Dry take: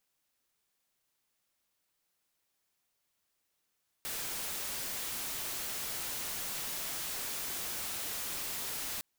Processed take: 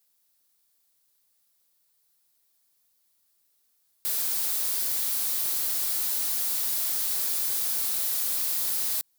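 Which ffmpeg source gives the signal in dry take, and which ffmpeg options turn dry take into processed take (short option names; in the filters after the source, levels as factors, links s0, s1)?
-f lavfi -i "anoisesrc=c=white:a=0.0218:d=4.96:r=44100:seed=1"
-filter_complex "[0:a]acrossover=split=230[s0][s1];[s0]alimiter=level_in=39.8:limit=0.0631:level=0:latency=1,volume=0.0251[s2];[s2][s1]amix=inputs=2:normalize=0,aexciter=amount=2.5:drive=4.5:freq=3800"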